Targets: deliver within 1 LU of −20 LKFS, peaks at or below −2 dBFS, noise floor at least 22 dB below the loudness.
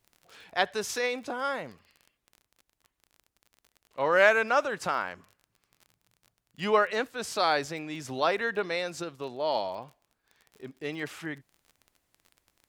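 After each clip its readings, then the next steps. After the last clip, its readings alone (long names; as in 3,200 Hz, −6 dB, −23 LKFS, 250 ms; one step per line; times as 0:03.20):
crackle rate 29 per second; integrated loudness −29.0 LKFS; sample peak −7.0 dBFS; target loudness −20.0 LKFS
→ click removal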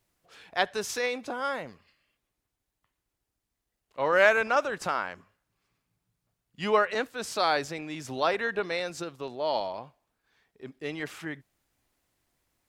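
crackle rate 0.079 per second; integrated loudness −29.0 LKFS; sample peak −7.0 dBFS; target loudness −20.0 LKFS
→ level +9 dB
brickwall limiter −2 dBFS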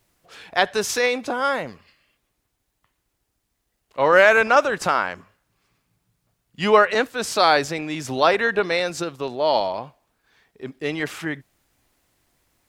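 integrated loudness −20.5 LKFS; sample peak −2.0 dBFS; background noise floor −75 dBFS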